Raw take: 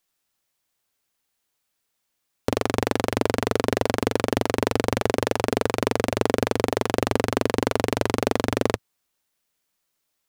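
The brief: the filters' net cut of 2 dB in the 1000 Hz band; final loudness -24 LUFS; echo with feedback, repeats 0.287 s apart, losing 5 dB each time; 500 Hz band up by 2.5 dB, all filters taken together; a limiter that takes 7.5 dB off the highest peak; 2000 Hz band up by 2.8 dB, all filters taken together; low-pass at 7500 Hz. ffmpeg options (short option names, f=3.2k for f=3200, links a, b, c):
-af "lowpass=7.5k,equalizer=f=500:t=o:g=4,equalizer=f=1k:t=o:g=-5.5,equalizer=f=2k:t=o:g=5,alimiter=limit=-9.5dB:level=0:latency=1,aecho=1:1:287|574|861|1148|1435|1722|2009:0.562|0.315|0.176|0.0988|0.0553|0.031|0.0173,volume=3.5dB"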